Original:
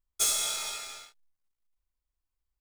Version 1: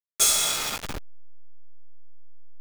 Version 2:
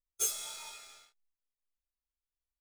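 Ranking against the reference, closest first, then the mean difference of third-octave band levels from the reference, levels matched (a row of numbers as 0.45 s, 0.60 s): 2, 1; 4.0 dB, 6.5 dB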